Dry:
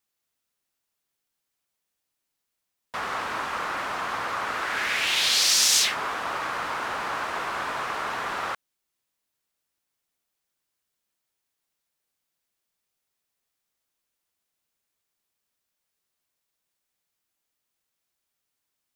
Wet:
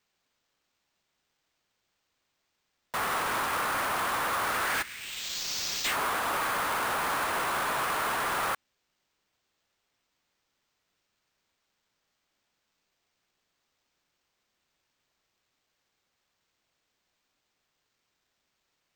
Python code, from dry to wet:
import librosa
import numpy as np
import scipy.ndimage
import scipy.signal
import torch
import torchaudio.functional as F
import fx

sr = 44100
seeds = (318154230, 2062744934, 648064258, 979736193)

y = fx.tone_stack(x, sr, knobs='6-0-2', at=(4.81, 5.84), fade=0.02)
y = np.repeat(y[::4], 4)[:len(y)]
y = np.clip(y, -10.0 ** (-28.5 / 20.0), 10.0 ** (-28.5 / 20.0))
y = y * 10.0 ** (2.5 / 20.0)